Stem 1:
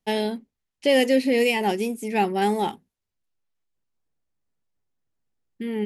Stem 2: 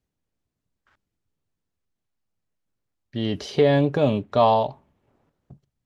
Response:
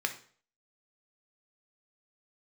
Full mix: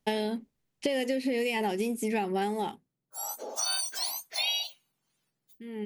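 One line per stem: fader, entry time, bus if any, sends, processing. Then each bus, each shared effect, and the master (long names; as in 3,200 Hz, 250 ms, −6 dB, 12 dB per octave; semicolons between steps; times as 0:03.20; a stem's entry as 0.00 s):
+2.5 dB, 0.00 s, no send, downward compressor, threshold −21 dBFS, peak gain reduction 6.5 dB; automatic ducking −18 dB, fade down 0.65 s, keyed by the second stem
−5.0 dB, 0.00 s, no send, frequency axis turned over on the octave scale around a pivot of 1,600 Hz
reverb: not used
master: downward compressor, threshold −26 dBFS, peak gain reduction 8.5 dB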